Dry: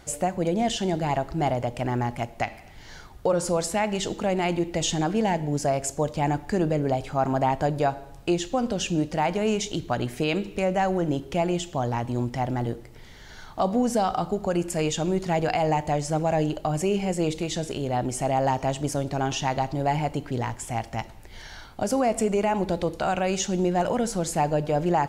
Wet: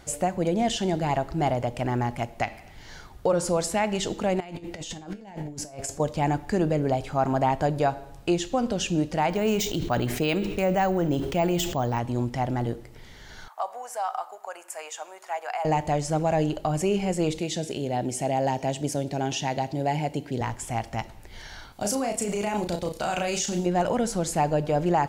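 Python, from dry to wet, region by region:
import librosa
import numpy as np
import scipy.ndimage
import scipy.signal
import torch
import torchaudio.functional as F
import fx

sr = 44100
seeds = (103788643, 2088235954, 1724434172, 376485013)

y = fx.chain(x, sr, fx.over_compress(threshold_db=-30.0, ratio=-0.5),
    fx.comb_fb(f0_hz=100.0, decay_s=0.3, harmonics='all', damping=0.0, mix_pct=60), at=(4.4, 6.0))
y = fx.chain(y, sr, fx.resample_bad(factor=2, down='filtered', up='hold'),
    fx.sustainer(db_per_s=47.0), at=(9.3, 11.99))
y = fx.chain(y, sr, fx.highpass(hz=770.0, slope=24),
    fx.peak_eq(hz=4000.0, db=-12.5, octaves=1.6), at=(13.48, 15.65))
y = fx.chain(y, sr, fx.highpass(hz=120.0, slope=12),
    fx.peak_eq(hz=1200.0, db=-13.0, octaves=0.51), at=(17.39, 20.41))
y = fx.chain(y, sr, fx.high_shelf(hz=3000.0, db=11.0),
    fx.level_steps(step_db=14),
    fx.doubler(ms=34.0, db=-5.0), at=(21.72, 23.66))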